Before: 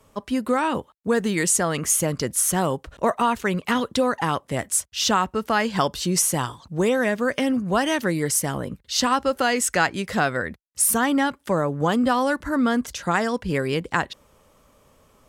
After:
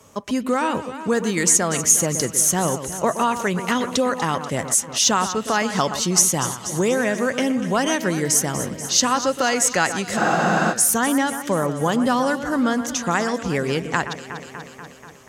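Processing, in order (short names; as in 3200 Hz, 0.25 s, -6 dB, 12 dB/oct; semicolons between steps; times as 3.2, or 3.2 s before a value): echo with dull and thin repeats by turns 0.121 s, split 2500 Hz, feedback 78%, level -11 dB; in parallel at +2.5 dB: compressor, threshold -36 dBFS, peak gain reduction 19.5 dB; on the sum: HPF 80 Hz; bell 6400 Hz +9.5 dB 0.43 oct; spectral freeze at 10.2, 0.51 s; gain -1 dB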